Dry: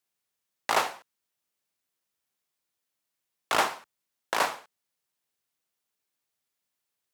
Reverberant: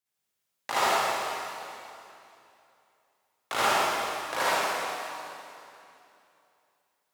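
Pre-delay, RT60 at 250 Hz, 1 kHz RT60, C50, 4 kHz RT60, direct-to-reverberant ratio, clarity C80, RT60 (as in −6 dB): 39 ms, 3.0 s, 2.7 s, −8.0 dB, 2.6 s, −10.0 dB, −4.5 dB, 2.7 s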